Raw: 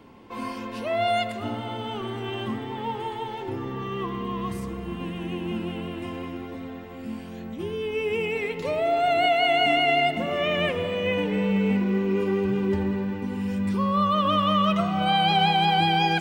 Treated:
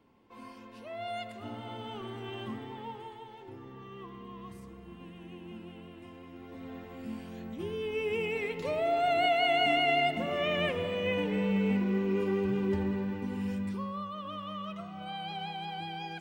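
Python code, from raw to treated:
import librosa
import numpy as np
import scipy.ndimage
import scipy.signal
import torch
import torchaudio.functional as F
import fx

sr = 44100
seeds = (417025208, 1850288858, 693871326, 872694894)

y = fx.gain(x, sr, db=fx.line((0.96, -15.5), (1.71, -9.0), (2.65, -9.0), (3.25, -15.5), (6.24, -15.5), (6.75, -5.5), (13.49, -5.5), (14.11, -18.0)))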